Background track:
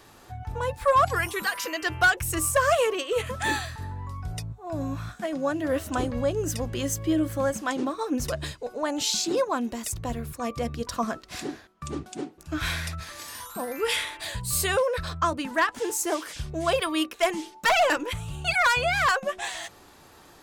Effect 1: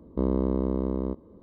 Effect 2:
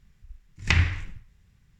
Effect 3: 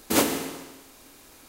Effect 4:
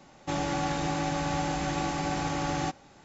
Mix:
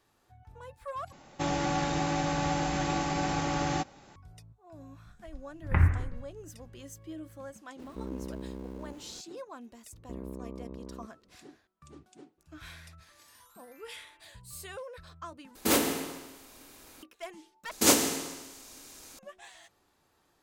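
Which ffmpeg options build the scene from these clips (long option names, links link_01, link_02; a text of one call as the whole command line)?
ffmpeg -i bed.wav -i cue0.wav -i cue1.wav -i cue2.wav -i cue3.wav -filter_complex "[1:a]asplit=2[link_01][link_02];[3:a]asplit=2[link_03][link_04];[0:a]volume=-18.5dB[link_05];[2:a]lowpass=frequency=1500:width=0.5412,lowpass=frequency=1500:width=1.3066[link_06];[link_01]aeval=exprs='val(0)+0.5*0.0211*sgn(val(0))':channel_layout=same[link_07];[link_02]lowpass=1900[link_08];[link_03]aeval=exprs='0.188*(abs(mod(val(0)/0.188+3,4)-2)-1)':channel_layout=same[link_09];[link_04]equalizer=frequency=6500:width_type=o:width=1.3:gain=8.5[link_10];[link_05]asplit=4[link_11][link_12][link_13][link_14];[link_11]atrim=end=1.124[link_15];[4:a]atrim=end=3.04[link_16];[link_12]atrim=start=4.156:end=15.554[link_17];[link_09]atrim=end=1.48,asetpts=PTS-STARTPTS,volume=-2dB[link_18];[link_13]atrim=start=17.026:end=17.714[link_19];[link_10]atrim=end=1.48,asetpts=PTS-STARTPTS,volume=-2.5dB[link_20];[link_14]atrim=start=19.186[link_21];[link_06]atrim=end=1.79,asetpts=PTS-STARTPTS,volume=-0.5dB,afade=type=in:duration=0.004:curve=hsin,afade=type=out:start_time=1.786:duration=0.004:curve=hsin,adelay=5040[link_22];[link_07]atrim=end=1.42,asetpts=PTS-STARTPTS,volume=-15dB,afade=type=in:duration=0.004:curve=hsin,afade=type=out:start_time=1.416:duration=0.004:curve=hsin,adelay=7790[link_23];[link_08]atrim=end=1.42,asetpts=PTS-STARTPTS,volume=-16dB,afade=type=in:duration=0.004:curve=hsin,afade=type=out:start_time=1.416:duration=0.004:curve=hsin,adelay=9920[link_24];[link_15][link_16]acrossfade=duration=0.004:curve1=hsin:curve2=hsin[link_25];[link_25][link_17]acrossfade=duration=0.004:curve1=hsin:curve2=hsin[link_26];[link_26][link_18]acrossfade=duration=0.004:curve1=hsin:curve2=hsin[link_27];[link_27][link_19]acrossfade=duration=0.004:curve1=hsin:curve2=hsin[link_28];[link_28][link_20]acrossfade=duration=0.004:curve1=hsin:curve2=hsin[link_29];[link_29][link_21]acrossfade=duration=0.004:curve1=hsin:curve2=hsin[link_30];[link_30][link_22][link_23][link_24]amix=inputs=4:normalize=0" out.wav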